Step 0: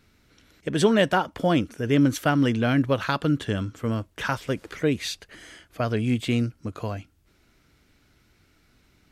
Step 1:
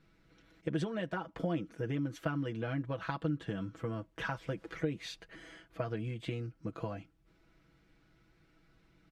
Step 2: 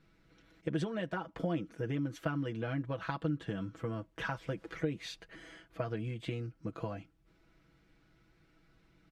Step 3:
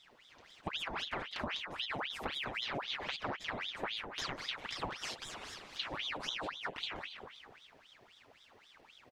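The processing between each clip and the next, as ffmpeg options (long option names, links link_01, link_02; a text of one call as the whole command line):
ffmpeg -i in.wav -af "acompressor=threshold=-28dB:ratio=6,lowpass=frequency=2000:poles=1,aecho=1:1:6.1:0.78,volume=-6dB" out.wav
ffmpeg -i in.wav -af anull out.wav
ffmpeg -i in.wav -filter_complex "[0:a]acompressor=threshold=-41dB:ratio=6,asplit=7[link_01][link_02][link_03][link_04][link_05][link_06][link_07];[link_02]adelay=199,afreqshift=-69,volume=-6.5dB[link_08];[link_03]adelay=398,afreqshift=-138,volume=-12.5dB[link_09];[link_04]adelay=597,afreqshift=-207,volume=-18.5dB[link_10];[link_05]adelay=796,afreqshift=-276,volume=-24.6dB[link_11];[link_06]adelay=995,afreqshift=-345,volume=-30.6dB[link_12];[link_07]adelay=1194,afreqshift=-414,volume=-36.6dB[link_13];[link_01][link_08][link_09][link_10][link_11][link_12][link_13]amix=inputs=7:normalize=0,aeval=exprs='val(0)*sin(2*PI*2000*n/s+2000*0.8/3.8*sin(2*PI*3.8*n/s))':channel_layout=same,volume=6.5dB" out.wav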